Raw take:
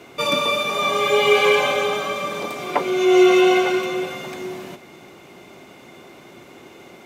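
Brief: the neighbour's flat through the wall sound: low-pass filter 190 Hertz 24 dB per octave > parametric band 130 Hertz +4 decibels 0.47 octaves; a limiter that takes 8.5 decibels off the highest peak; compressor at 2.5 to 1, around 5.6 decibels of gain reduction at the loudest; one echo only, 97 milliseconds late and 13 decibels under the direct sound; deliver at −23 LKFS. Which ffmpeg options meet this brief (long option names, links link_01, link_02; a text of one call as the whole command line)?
ffmpeg -i in.wav -af "acompressor=threshold=-18dB:ratio=2.5,alimiter=limit=-17dB:level=0:latency=1,lowpass=frequency=190:width=0.5412,lowpass=frequency=190:width=1.3066,equalizer=frequency=130:width_type=o:width=0.47:gain=4,aecho=1:1:97:0.224,volume=24dB" out.wav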